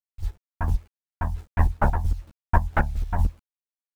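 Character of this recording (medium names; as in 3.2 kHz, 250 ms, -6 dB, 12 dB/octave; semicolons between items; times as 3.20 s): a quantiser's noise floor 8-bit, dither none; chopped level 4.4 Hz, depth 60%, duty 30%; a shimmering, thickened sound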